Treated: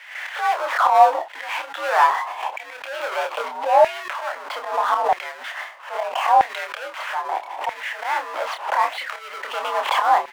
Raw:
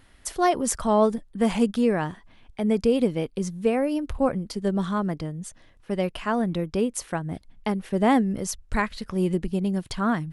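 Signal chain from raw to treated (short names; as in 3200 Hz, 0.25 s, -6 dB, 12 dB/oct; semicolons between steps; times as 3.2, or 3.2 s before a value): gate with hold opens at -43 dBFS; mistuned SSB +75 Hz 290–3100 Hz; auto swell 0.652 s; power-law curve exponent 0.5; band shelf 720 Hz +10 dB 1.1 oct; doubler 28 ms -5.5 dB; LFO high-pass saw down 0.78 Hz 790–2000 Hz; backwards sustainer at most 110 dB/s; gain +6 dB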